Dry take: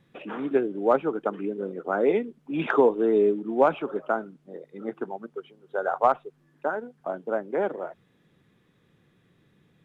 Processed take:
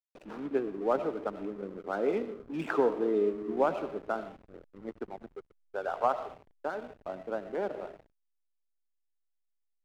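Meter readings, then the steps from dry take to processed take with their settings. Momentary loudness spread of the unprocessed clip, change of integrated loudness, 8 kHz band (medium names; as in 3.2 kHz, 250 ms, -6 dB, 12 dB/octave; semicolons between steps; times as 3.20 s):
16 LU, -6.5 dB, no reading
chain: algorithmic reverb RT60 0.89 s, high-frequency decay 0.35×, pre-delay 50 ms, DRR 10.5 dB; hysteresis with a dead band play -34 dBFS; trim -7 dB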